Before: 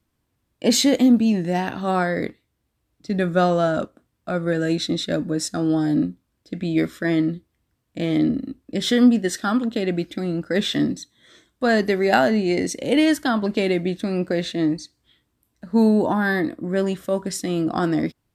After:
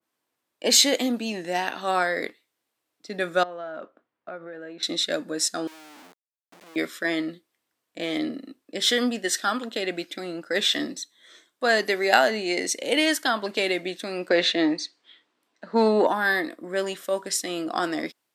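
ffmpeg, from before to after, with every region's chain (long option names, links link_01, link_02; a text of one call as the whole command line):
ffmpeg -i in.wav -filter_complex "[0:a]asettb=1/sr,asplit=3[link_01][link_02][link_03];[link_01]atrim=end=3.434[link_04];[link_02]atrim=start=3.43:end=4.83,asetpts=PTS-STARTPTS,afade=type=in:duration=0.004:curve=qsin,afade=type=out:start_time=1.396:duration=0.004:curve=qsin,lowpass=2000,acompressor=threshold=-28dB:ratio=16:attack=3.2:release=140:knee=1:detection=peak[link_05];[link_03]atrim=start=4.826[link_06];[link_04][link_05]acrossfade=duration=0.004:curve1=hsin:curve2=qsin[link_07];[link_07][link_06]acrossfade=duration=0.004:curve1=qsin:curve2=hsin,asettb=1/sr,asplit=3[link_08][link_09][link_10];[link_08]atrim=end=5.674[link_11];[link_09]atrim=start=5.67:end=6.76,asetpts=PTS-STARTPTS,afade=type=in:duration=0.004:curve=qsin,afade=type=out:start_time=1.086:duration=0.004:curve=qsin,aeval=exprs='(tanh(100*val(0)+0.65)-tanh(0.65))/100':channel_layout=same,aeval=exprs='val(0)*gte(abs(val(0)),0.01)':channel_layout=same[link_12];[link_10]atrim=start=6.756[link_13];[link_11][link_12]acrossfade=duration=0.004:curve1=hsin:curve2=qsin[link_14];[link_14][link_13]acrossfade=duration=0.004:curve1=qsin:curve2=hsin,asettb=1/sr,asplit=3[link_15][link_16][link_17];[link_15]atrim=end=14.294[link_18];[link_16]atrim=start=14.29:end=16.07,asetpts=PTS-STARTPTS,afade=type=in:duration=0.004:curve=qsin,afade=type=out:start_time=1.776:duration=0.004:curve=qsin,acontrast=85,highpass=160,lowpass=4300[link_19];[link_17]atrim=start=16.066[link_20];[link_18][link_19]acrossfade=duration=0.004:curve1=hsin:curve2=qsin[link_21];[link_21][link_20]acrossfade=duration=0.004:curve1=qsin:curve2=hsin,highpass=450,adynamicequalizer=threshold=0.0126:dfrequency=1700:dqfactor=0.7:tfrequency=1700:tqfactor=0.7:attack=5:release=100:ratio=0.375:range=2.5:mode=boostabove:tftype=highshelf,volume=-1dB" out.wav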